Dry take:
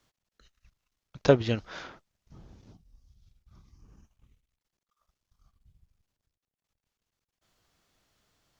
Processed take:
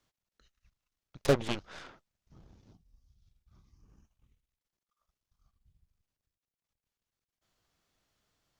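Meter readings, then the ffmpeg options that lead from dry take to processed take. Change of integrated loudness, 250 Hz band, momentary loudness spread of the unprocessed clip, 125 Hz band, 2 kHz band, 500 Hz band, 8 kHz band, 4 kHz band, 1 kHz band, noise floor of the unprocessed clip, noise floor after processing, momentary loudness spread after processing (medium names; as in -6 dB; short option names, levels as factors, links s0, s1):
-4.5 dB, -5.5 dB, 20 LU, -6.0 dB, -3.5 dB, -6.0 dB, no reading, -1.5 dB, -3.5 dB, under -85 dBFS, under -85 dBFS, 21 LU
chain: -af "asoftclip=type=tanh:threshold=0.106,aeval=exprs='0.106*(cos(1*acos(clip(val(0)/0.106,-1,1)))-cos(1*PI/2))+0.0531*(cos(3*acos(clip(val(0)/0.106,-1,1)))-cos(3*PI/2))+0.0133*(cos(6*acos(clip(val(0)/0.106,-1,1)))-cos(6*PI/2))':c=same"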